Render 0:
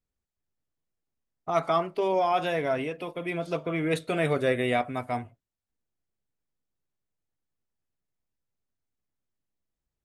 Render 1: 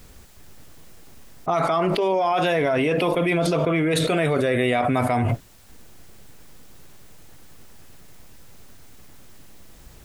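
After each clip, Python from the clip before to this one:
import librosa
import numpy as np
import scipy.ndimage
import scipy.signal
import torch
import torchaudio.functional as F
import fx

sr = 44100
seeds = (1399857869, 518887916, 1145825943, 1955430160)

y = fx.env_flatten(x, sr, amount_pct=100)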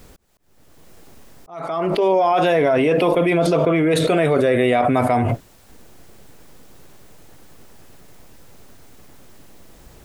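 y = fx.peak_eq(x, sr, hz=490.0, db=5.5, octaves=2.6)
y = fx.auto_swell(y, sr, attack_ms=607.0)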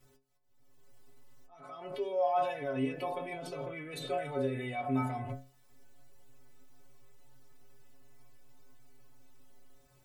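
y = fx.stiff_resonator(x, sr, f0_hz=130.0, decay_s=0.37, stiffness=0.008)
y = y * 10.0 ** (-7.0 / 20.0)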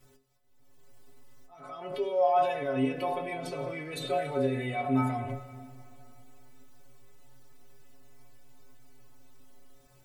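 y = fx.rev_plate(x, sr, seeds[0], rt60_s=2.8, hf_ratio=0.95, predelay_ms=0, drr_db=11.5)
y = y * 10.0 ** (4.0 / 20.0)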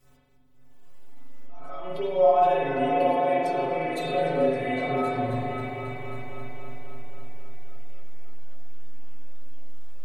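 y = fx.echo_opening(x, sr, ms=269, hz=400, octaves=2, feedback_pct=70, wet_db=-3)
y = fx.rev_spring(y, sr, rt60_s=1.1, pass_ms=(43,), chirp_ms=70, drr_db=-6.5)
y = y * 10.0 ** (-2.5 / 20.0)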